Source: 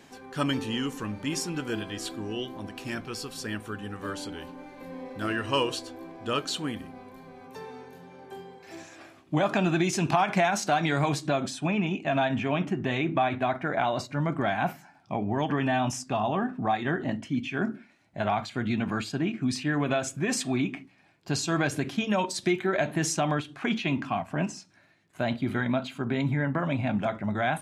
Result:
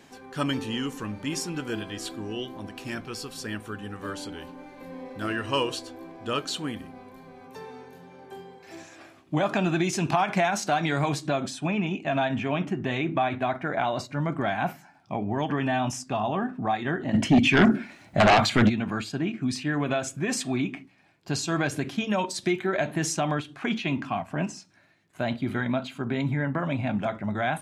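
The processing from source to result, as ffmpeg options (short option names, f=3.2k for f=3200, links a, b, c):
-filter_complex "[0:a]asplit=3[a][b][c];[a]afade=t=out:st=17.13:d=0.02[d];[b]aeval=exprs='0.224*sin(PI/2*3.55*val(0)/0.224)':c=same,afade=t=in:st=17.13:d=0.02,afade=t=out:st=18.68:d=0.02[e];[c]afade=t=in:st=18.68:d=0.02[f];[d][e][f]amix=inputs=3:normalize=0"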